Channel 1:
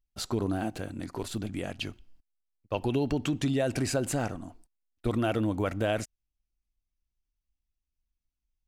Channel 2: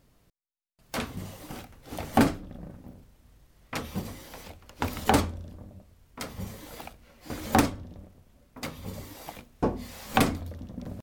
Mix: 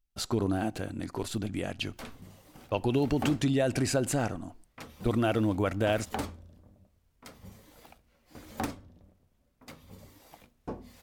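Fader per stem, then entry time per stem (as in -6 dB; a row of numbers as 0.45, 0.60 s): +1.0, -12.0 dB; 0.00, 1.05 s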